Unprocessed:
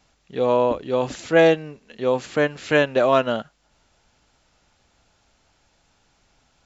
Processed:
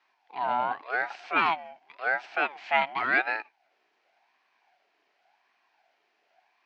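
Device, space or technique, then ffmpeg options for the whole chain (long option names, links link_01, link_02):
voice changer toy: -af "aeval=exprs='val(0)*sin(2*PI*740*n/s+740*0.5/0.9*sin(2*PI*0.9*n/s))':channel_layout=same,highpass=490,equalizer=frequency=510:width_type=q:width=4:gain=-9,equalizer=frequency=730:width_type=q:width=4:gain=10,equalizer=frequency=1200:width_type=q:width=4:gain=-6,equalizer=frequency=1600:width_type=q:width=4:gain=4,equalizer=frequency=2400:width_type=q:width=4:gain=6,equalizer=frequency=3600:width_type=q:width=4:gain=-5,lowpass=frequency=4400:width=0.5412,lowpass=frequency=4400:width=1.3066,volume=-4.5dB"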